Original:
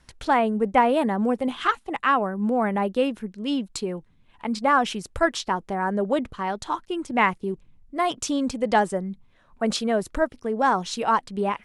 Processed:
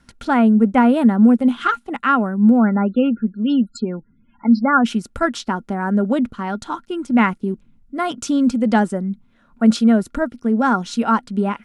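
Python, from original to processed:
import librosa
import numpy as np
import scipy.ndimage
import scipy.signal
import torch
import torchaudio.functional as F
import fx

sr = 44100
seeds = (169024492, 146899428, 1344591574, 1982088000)

y = fx.small_body(x, sr, hz=(230.0, 1400.0), ring_ms=55, db=15)
y = fx.spec_topn(y, sr, count=32, at=(2.58, 4.84), fade=0.02)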